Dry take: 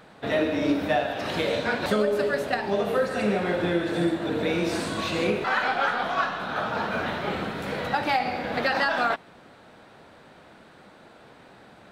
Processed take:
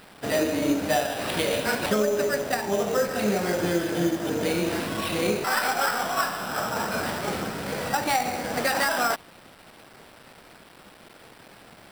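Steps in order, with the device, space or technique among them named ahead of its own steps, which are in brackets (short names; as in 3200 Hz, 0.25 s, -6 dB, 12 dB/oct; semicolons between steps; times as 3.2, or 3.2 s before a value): 0.92–1.89 high shelf 5500 Hz +9.5 dB; early 8-bit sampler (sample-rate reducer 6600 Hz, jitter 0%; bit-crush 8-bit)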